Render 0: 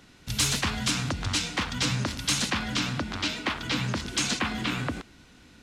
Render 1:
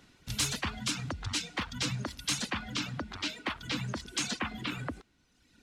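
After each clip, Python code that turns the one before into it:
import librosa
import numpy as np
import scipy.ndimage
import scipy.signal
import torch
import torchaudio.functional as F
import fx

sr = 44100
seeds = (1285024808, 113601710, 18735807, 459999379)

y = fx.dereverb_blind(x, sr, rt60_s=1.3)
y = y * librosa.db_to_amplitude(-5.0)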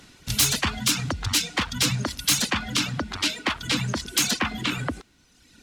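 y = fx.self_delay(x, sr, depth_ms=0.052)
y = fx.peak_eq(y, sr, hz=9400.0, db=5.5, octaves=2.2)
y = y * librosa.db_to_amplitude(8.5)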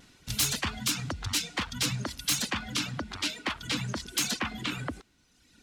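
y = fx.vibrato(x, sr, rate_hz=0.48, depth_cents=10.0)
y = y * librosa.db_to_amplitude(-6.5)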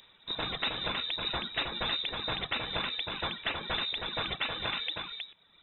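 y = x + 10.0 ** (-4.5 / 20.0) * np.pad(x, (int(317 * sr / 1000.0), 0))[:len(x)]
y = fx.freq_invert(y, sr, carrier_hz=3800)
y = y * librosa.db_to_amplitude(-1.5)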